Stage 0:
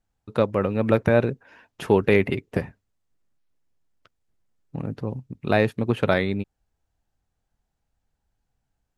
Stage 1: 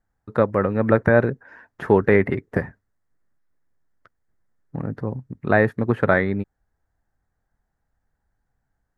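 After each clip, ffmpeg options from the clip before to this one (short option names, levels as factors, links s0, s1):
-filter_complex "[0:a]acrossover=split=3800[s0][s1];[s1]acompressor=threshold=0.00355:ratio=4:attack=1:release=60[s2];[s0][s2]amix=inputs=2:normalize=0,highshelf=f=2200:t=q:w=3:g=-6.5,volume=1.26"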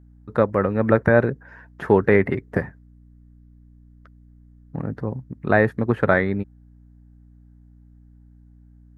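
-af "aeval=exprs='val(0)+0.00398*(sin(2*PI*60*n/s)+sin(2*PI*2*60*n/s)/2+sin(2*PI*3*60*n/s)/3+sin(2*PI*4*60*n/s)/4+sin(2*PI*5*60*n/s)/5)':c=same"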